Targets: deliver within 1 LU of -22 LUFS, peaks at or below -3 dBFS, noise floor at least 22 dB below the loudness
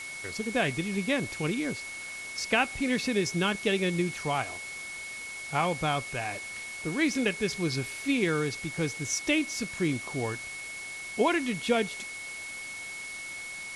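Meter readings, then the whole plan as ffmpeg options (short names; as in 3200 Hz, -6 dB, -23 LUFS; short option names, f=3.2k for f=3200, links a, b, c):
steady tone 2200 Hz; tone level -38 dBFS; noise floor -40 dBFS; noise floor target -52 dBFS; loudness -30.0 LUFS; peak -12.5 dBFS; loudness target -22.0 LUFS
-> -af "bandreject=f=2.2k:w=30"
-af "afftdn=nr=12:nf=-40"
-af "volume=8dB"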